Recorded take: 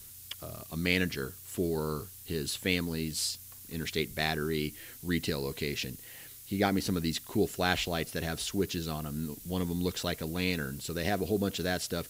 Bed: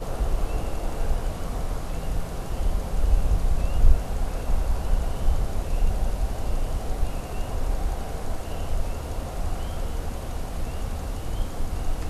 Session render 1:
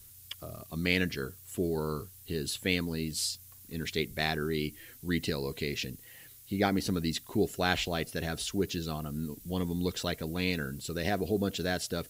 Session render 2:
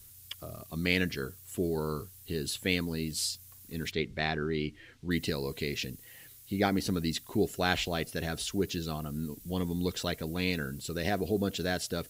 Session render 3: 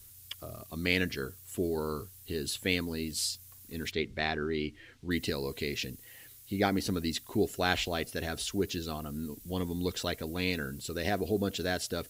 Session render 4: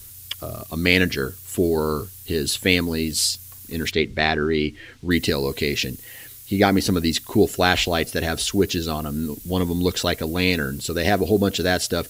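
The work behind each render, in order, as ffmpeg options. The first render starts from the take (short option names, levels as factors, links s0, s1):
-af "afftdn=nr=6:nf=-49"
-filter_complex "[0:a]asettb=1/sr,asplit=3[s0][s1][s2];[s0]atrim=end=3.914[s3];[s1]atrim=start=3.91:end=5.11,asetpts=PTS-STARTPTS,afade=t=in:d=0.004:c=qsin,afade=t=out:st=1.196:d=0.004:c=qsin,lowpass=3700[s4];[s2]atrim=start=5.106[s5];[s3][s4]acrossfade=d=0.004:c1=hsin:c2=qsin[s6];[s6][s5]acrossfade=d=0.004:c1=qsin:c2=hsin"
-af "equalizer=f=160:t=o:w=0.31:g=-7"
-af "volume=3.76,alimiter=limit=0.891:level=0:latency=1"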